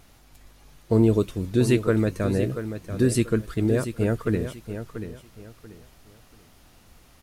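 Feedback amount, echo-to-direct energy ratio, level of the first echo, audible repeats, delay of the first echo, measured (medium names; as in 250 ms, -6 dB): 27%, -9.5 dB, -10.0 dB, 3, 686 ms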